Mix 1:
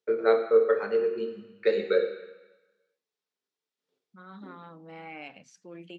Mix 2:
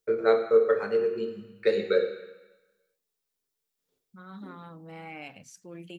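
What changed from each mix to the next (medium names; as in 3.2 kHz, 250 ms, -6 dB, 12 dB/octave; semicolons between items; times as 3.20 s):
master: remove band-pass 200–4600 Hz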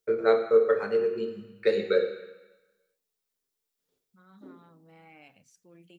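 second voice -11.5 dB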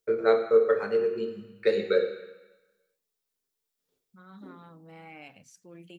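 second voice +6.5 dB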